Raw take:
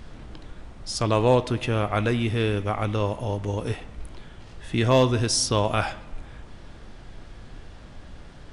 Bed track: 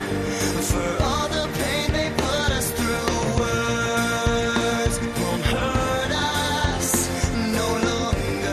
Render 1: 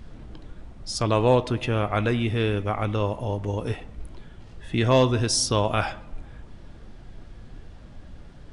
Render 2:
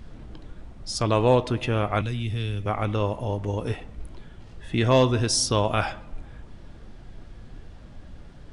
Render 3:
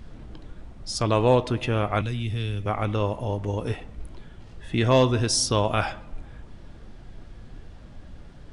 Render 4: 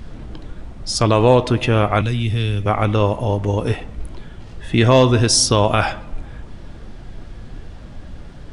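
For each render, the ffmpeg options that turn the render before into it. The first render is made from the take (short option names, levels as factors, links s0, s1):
-af "afftdn=nr=6:nf=-45"
-filter_complex "[0:a]asettb=1/sr,asplit=3[s0][s1][s2];[s0]atrim=end=2.014[s3];[s1]atrim=start=2.01:end=2.66,asetpts=PTS-STARTPTS,afade=t=in:d=0.004:c=qsin,afade=t=out:st=0.646:d=0.004:c=qsin,acrossover=split=170|3000[s4][s5][s6];[s5]acompressor=threshold=0.00398:ratio=2:attack=3.2:release=140:knee=2.83:detection=peak[s7];[s4][s7][s6]amix=inputs=3:normalize=0[s8];[s2]atrim=start=2.656[s9];[s3][s8]acrossfade=d=0.004:c1=hsin:c2=qsin[s10];[s10][s9]acrossfade=d=0.004:c1=qsin:c2=hsin"
-af anull
-af "volume=2.66,alimiter=limit=0.708:level=0:latency=1"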